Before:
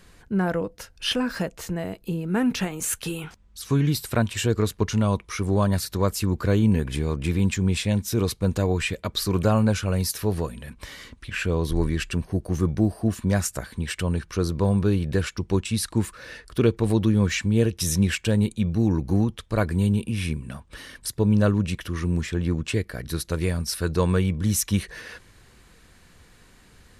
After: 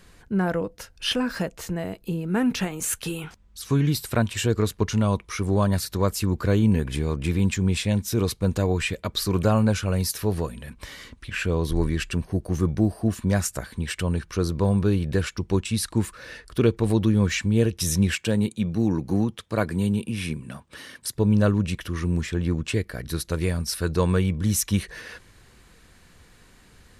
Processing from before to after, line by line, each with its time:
18.14–21.15 s: high-pass 120 Hz

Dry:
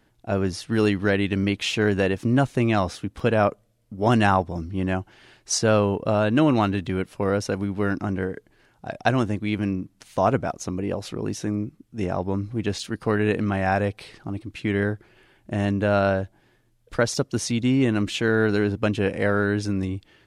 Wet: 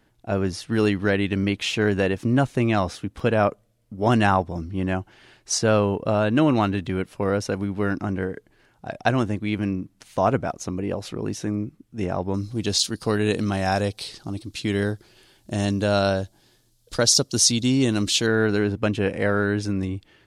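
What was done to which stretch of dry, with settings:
12.34–18.27 s: resonant high shelf 3.1 kHz +11 dB, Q 1.5

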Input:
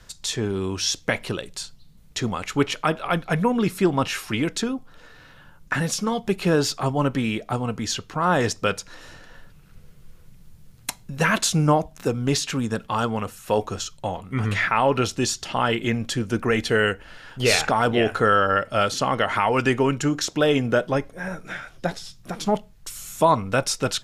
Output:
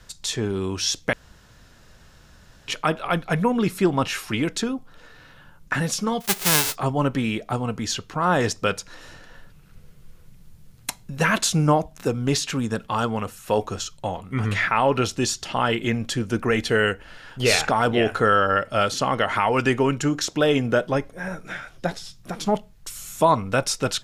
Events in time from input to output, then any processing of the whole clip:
1.13–2.68 s: room tone
6.20–6.74 s: formants flattened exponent 0.1

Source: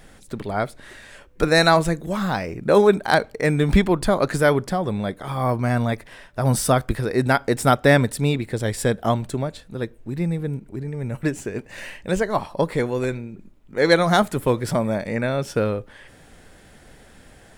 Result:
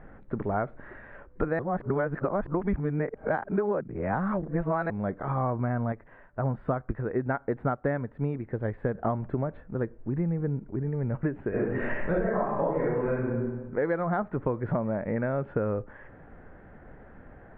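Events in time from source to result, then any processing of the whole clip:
1.59–4.90 s: reverse
5.92–8.95 s: upward expansion, over -25 dBFS
11.49–13.28 s: reverb throw, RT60 0.95 s, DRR -10 dB
whole clip: inverse Chebyshev low-pass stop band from 5.4 kHz, stop band 60 dB; compression 10:1, threshold -24 dBFS

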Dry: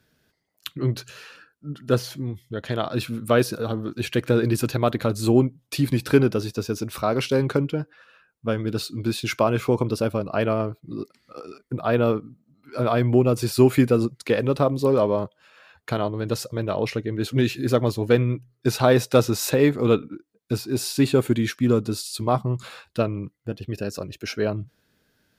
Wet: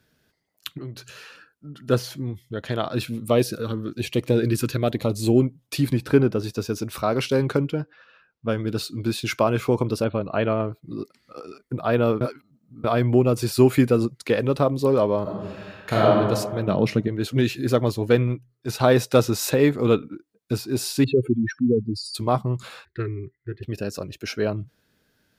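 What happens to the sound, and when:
0.78–1.76 s: compression 2.5:1, threshold -37 dBFS
3.05–5.42 s: LFO notch sine 1.1 Hz 690–1600 Hz
5.93–6.44 s: treble shelf 2.3 kHz -8.5 dB
7.81–8.49 s: low-pass 5.5 kHz 24 dB/octave
10.04–10.71 s: brick-wall FIR low-pass 4.4 kHz
12.21–12.84 s: reverse
15.22–16.08 s: reverb throw, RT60 1.5 s, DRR -7 dB
16.67–17.08 s: peaking EQ 180 Hz +11.5 dB 1.3 oct
18.27–18.81 s: transient shaper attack -10 dB, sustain -4 dB
21.04–22.15 s: spectral contrast enhancement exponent 3.1
22.85–23.63 s: FFT filter 120 Hz 0 dB, 250 Hz -17 dB, 390 Hz +8 dB, 580 Hz -29 dB, 1.2 kHz -11 dB, 1.9 kHz +10 dB, 2.8 kHz -18 dB, 4.2 kHz -11 dB, 6.1 kHz -30 dB

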